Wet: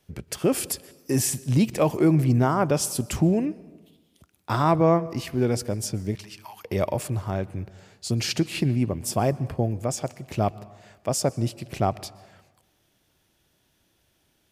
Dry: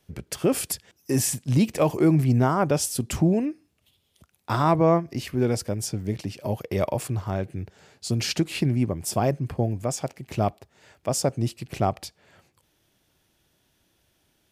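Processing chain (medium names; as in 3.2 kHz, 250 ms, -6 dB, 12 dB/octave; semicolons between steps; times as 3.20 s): 6.15–6.65 s: steep high-pass 870 Hz 48 dB/octave; on a send: reverberation RT60 1.2 s, pre-delay 116 ms, DRR 20 dB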